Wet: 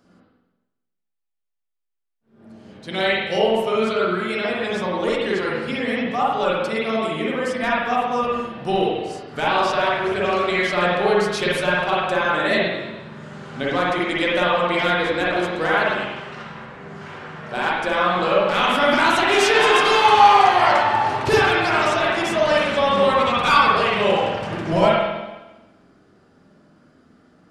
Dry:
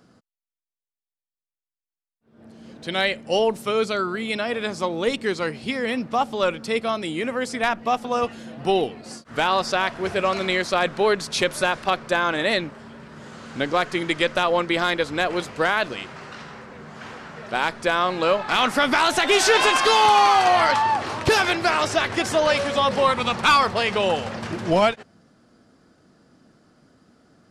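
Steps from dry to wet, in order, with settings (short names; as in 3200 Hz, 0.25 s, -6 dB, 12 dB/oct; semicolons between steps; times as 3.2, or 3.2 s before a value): spring tank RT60 1.1 s, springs 45/50 ms, chirp 60 ms, DRR -6 dB; flange 0.13 Hz, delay 3.2 ms, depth 9.2 ms, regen -61%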